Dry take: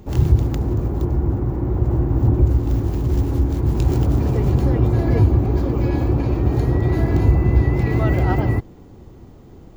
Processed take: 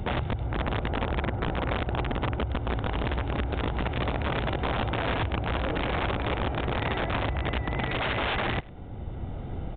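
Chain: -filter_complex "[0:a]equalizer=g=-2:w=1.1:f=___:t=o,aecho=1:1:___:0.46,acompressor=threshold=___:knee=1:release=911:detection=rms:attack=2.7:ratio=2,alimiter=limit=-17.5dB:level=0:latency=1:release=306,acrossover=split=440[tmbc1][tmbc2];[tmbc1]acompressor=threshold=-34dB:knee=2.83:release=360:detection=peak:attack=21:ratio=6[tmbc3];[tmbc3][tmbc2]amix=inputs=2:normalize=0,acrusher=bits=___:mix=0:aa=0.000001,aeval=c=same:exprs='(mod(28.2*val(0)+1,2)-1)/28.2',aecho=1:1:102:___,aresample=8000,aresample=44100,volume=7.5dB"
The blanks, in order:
180, 1.4, -24dB, 11, 0.075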